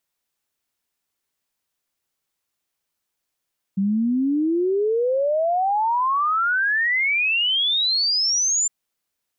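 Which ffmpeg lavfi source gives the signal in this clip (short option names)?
-f lavfi -i "aevalsrc='0.133*clip(min(t,4.91-t)/0.01,0,1)*sin(2*PI*190*4.91/log(7300/190)*(exp(log(7300/190)*t/4.91)-1))':d=4.91:s=44100"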